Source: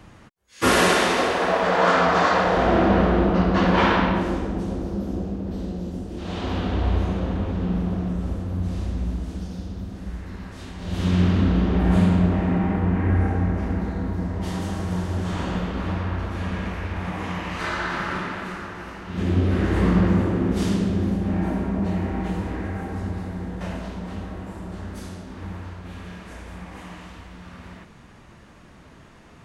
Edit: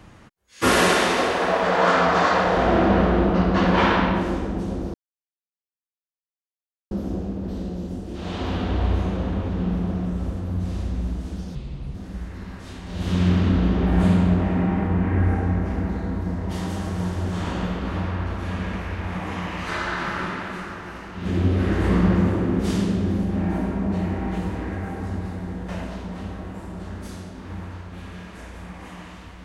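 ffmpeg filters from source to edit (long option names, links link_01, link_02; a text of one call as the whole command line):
ffmpeg -i in.wav -filter_complex "[0:a]asplit=4[link_01][link_02][link_03][link_04];[link_01]atrim=end=4.94,asetpts=PTS-STARTPTS,afade=type=out:start_time=4.936:duration=0.004:curve=hsin,apad=pad_dur=1.97[link_05];[link_02]atrim=start=4.94:end=9.584,asetpts=PTS-STARTPTS,afade=type=in:duration=0.004:curve=hsin[link_06];[link_03]atrim=start=9.58:end=9.87,asetpts=PTS-STARTPTS,asetrate=32193,aresample=44100,atrim=end_sample=17519,asetpts=PTS-STARTPTS[link_07];[link_04]atrim=start=9.866[link_08];[link_05][link_06]concat=n=2:v=0:a=1[link_09];[link_09][link_07]acrossfade=duration=0.004:curve1=hsin:curve2=hsin[link_10];[link_10][link_08]acrossfade=duration=0.004:curve1=hsin:curve2=hsin" out.wav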